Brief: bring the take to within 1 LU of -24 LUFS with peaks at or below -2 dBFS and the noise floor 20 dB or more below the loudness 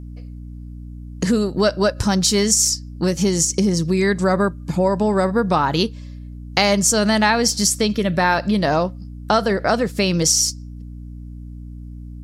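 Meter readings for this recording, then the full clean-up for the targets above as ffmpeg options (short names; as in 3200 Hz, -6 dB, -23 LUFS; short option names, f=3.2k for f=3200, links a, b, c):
hum 60 Hz; harmonics up to 300 Hz; hum level -32 dBFS; loudness -18.0 LUFS; peak -1.5 dBFS; loudness target -24.0 LUFS
-> -af "bandreject=f=60:t=h:w=6,bandreject=f=120:t=h:w=6,bandreject=f=180:t=h:w=6,bandreject=f=240:t=h:w=6,bandreject=f=300:t=h:w=6"
-af "volume=-6dB"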